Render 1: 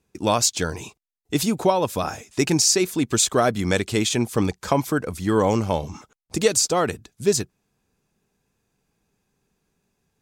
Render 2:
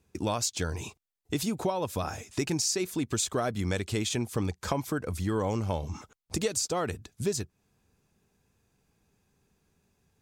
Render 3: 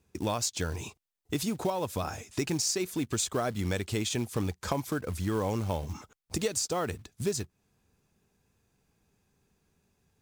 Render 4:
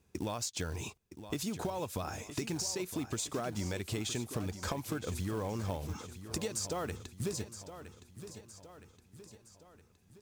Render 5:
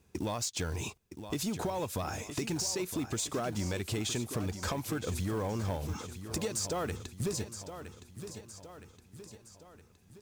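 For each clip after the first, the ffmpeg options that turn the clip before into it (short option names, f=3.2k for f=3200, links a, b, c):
-af "equalizer=f=83:t=o:w=0.83:g=7.5,acompressor=threshold=-31dB:ratio=2.5"
-af "acrusher=bits=5:mode=log:mix=0:aa=0.000001,volume=-1dB"
-filter_complex "[0:a]acompressor=threshold=-33dB:ratio=6,asplit=2[a][b];[b]aecho=0:1:966|1932|2898|3864|4830:0.251|0.128|0.0653|0.0333|0.017[c];[a][c]amix=inputs=2:normalize=0"
-af "asoftclip=type=tanh:threshold=-29dB,volume=4dB"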